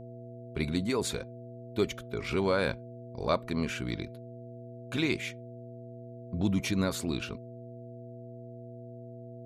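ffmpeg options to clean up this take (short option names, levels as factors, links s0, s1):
-af "bandreject=f=120.6:t=h:w=4,bandreject=f=241.2:t=h:w=4,bandreject=f=361.8:t=h:w=4,bandreject=f=482.4:t=h:w=4,bandreject=f=660:w=30"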